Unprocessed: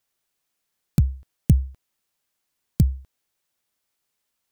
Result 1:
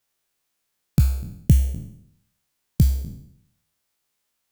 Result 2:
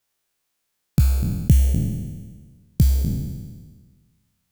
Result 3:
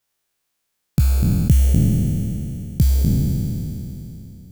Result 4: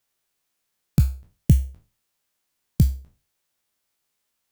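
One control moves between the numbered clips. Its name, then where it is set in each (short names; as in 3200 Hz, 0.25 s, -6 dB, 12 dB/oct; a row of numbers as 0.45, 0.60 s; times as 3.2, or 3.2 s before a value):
spectral trails, RT60: 0.71, 1.49, 3.21, 0.33 s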